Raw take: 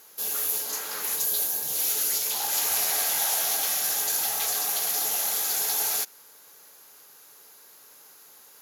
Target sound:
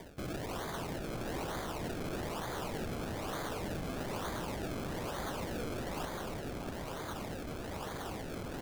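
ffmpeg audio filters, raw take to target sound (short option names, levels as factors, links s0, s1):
-filter_complex "[0:a]equalizer=f=11000:t=o:w=0.87:g=14.5,areverse,acompressor=threshold=0.0141:ratio=6,areverse,acrusher=samples=32:mix=1:aa=0.000001:lfo=1:lforange=32:lforate=1.1,asoftclip=type=tanh:threshold=0.0133,asplit=2[s0][s1];[s1]adelay=641.4,volume=0.447,highshelf=f=4000:g=-14.4[s2];[s0][s2]amix=inputs=2:normalize=0,volume=1.33"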